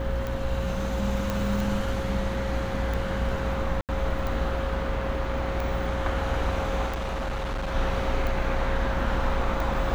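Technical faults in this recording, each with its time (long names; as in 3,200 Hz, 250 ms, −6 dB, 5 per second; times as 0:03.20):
mains buzz 60 Hz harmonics 31 −31 dBFS
scratch tick −18 dBFS
whistle 540 Hz −33 dBFS
0:01.30: click
0:03.81–0:03.89: drop-out 78 ms
0:06.86–0:07.75: clipping −26.5 dBFS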